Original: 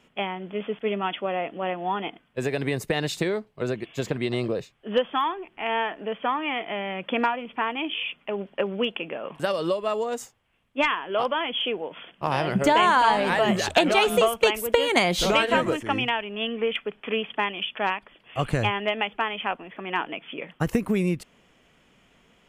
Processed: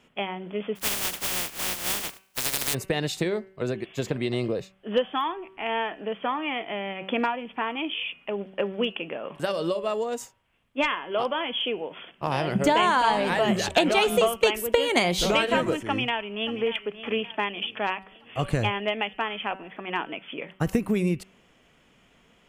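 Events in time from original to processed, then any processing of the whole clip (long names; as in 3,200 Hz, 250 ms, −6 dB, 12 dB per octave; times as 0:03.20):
0:00.75–0:02.73: compressing power law on the bin magnitudes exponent 0.1
0:15.87–0:16.62: delay throw 580 ms, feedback 45%, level −14 dB
whole clip: hum removal 190.8 Hz, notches 16; dynamic equaliser 1,300 Hz, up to −3 dB, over −35 dBFS, Q 0.74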